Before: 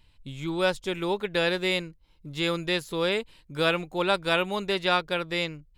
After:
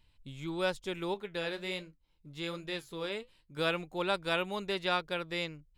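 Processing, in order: 1.14–3.57 s: flange 1.3 Hz, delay 8 ms, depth 6.3 ms, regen -63%; trim -7 dB

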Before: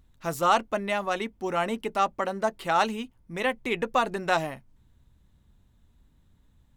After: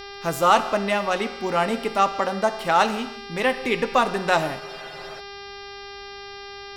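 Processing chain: gated-style reverb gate 360 ms falling, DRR 10 dB; mains buzz 400 Hz, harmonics 14, -43 dBFS -3 dB/octave; spectral freeze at 4.61 s, 0.58 s; trim +4.5 dB

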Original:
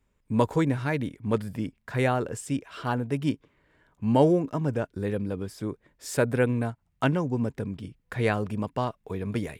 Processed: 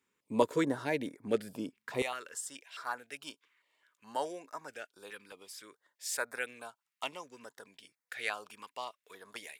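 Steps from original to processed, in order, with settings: high-pass 360 Hz 12 dB/octave, from 2.02 s 1.3 kHz; step-sequenced notch 4.7 Hz 650–3000 Hz

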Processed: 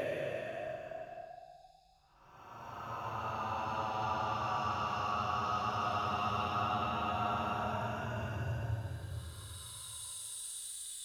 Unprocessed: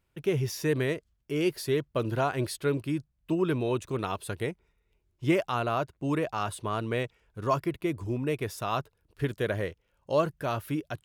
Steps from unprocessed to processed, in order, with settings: Paulstretch 36×, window 0.05 s, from 6.25 s; two-slope reverb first 0.81 s, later 2.4 s, from -18 dB, DRR 5.5 dB; trim -6.5 dB

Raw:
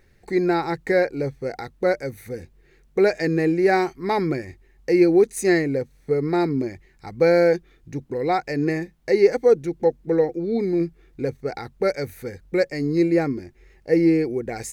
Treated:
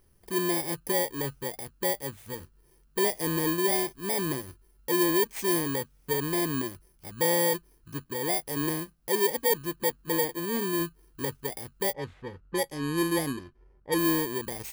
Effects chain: bit-reversed sample order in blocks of 32 samples; 11.93–13.99 s: level-controlled noise filter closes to 1.2 kHz, open at -17 dBFS; saturation -12.5 dBFS, distortion -16 dB; trim -6 dB

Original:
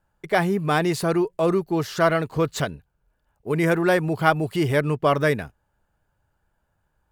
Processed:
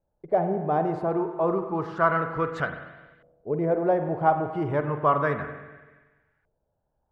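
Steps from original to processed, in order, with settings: pre-emphasis filter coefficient 0.8; spring tank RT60 1.3 s, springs 43/47 ms, chirp 60 ms, DRR 7 dB; LFO low-pass saw up 0.31 Hz 550–1900 Hz; trim +6.5 dB

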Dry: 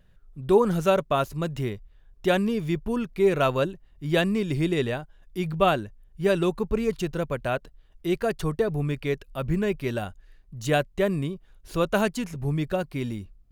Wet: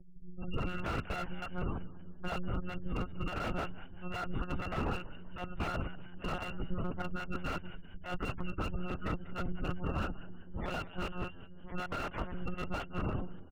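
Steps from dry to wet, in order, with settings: bit-reversed sample order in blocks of 256 samples; low-pass 1.4 kHz 12 dB/octave; monotone LPC vocoder at 8 kHz 180 Hz; 10.66–12.24 s: bass shelf 280 Hz -4 dB; in parallel at +2 dB: compressor with a negative ratio -40 dBFS, ratio -0.5; on the sum: spectral gate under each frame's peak -25 dB strong; on a send: frequency-shifting echo 191 ms, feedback 42%, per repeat +81 Hz, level -19 dB; on the sum: slew-rate limiter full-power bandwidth 22 Hz

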